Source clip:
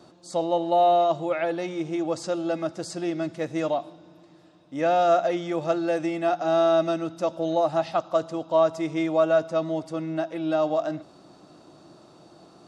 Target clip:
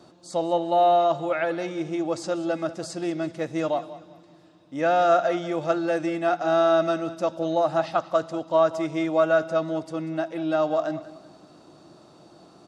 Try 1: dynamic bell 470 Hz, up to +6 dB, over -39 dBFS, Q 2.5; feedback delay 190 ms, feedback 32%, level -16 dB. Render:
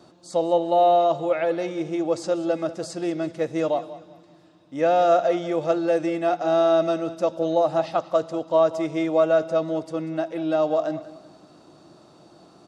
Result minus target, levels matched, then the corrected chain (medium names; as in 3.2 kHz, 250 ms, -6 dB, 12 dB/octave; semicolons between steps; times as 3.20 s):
2 kHz band -5.0 dB
dynamic bell 1.5 kHz, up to +6 dB, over -39 dBFS, Q 2.5; feedback delay 190 ms, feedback 32%, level -16 dB